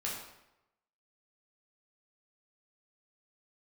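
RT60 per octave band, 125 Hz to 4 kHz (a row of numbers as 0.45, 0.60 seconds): 0.85, 0.85, 0.90, 0.90, 0.80, 0.70 seconds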